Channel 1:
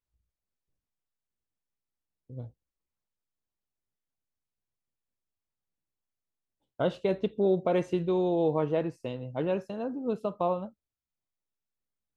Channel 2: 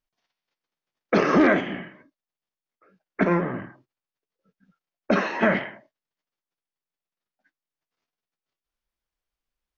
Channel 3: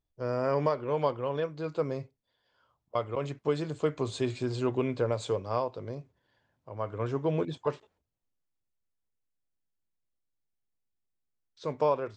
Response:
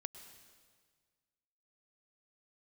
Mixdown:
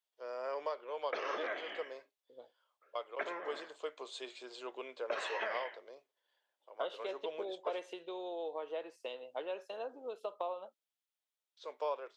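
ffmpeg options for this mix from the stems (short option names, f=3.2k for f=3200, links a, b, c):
-filter_complex "[0:a]volume=-2dB[a];[1:a]volume=-9.5dB[b];[2:a]volume=-9.5dB[c];[a][b]amix=inputs=2:normalize=0,acompressor=threshold=-34dB:ratio=5,volume=0dB[d];[c][d]amix=inputs=2:normalize=0,highpass=f=460:w=0.5412,highpass=f=460:w=1.3066,equalizer=f=3.3k:w=2.2:g=7"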